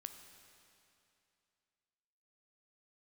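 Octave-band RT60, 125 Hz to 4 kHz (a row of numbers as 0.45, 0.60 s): 2.7, 2.7, 2.7, 2.7, 2.6, 2.6 s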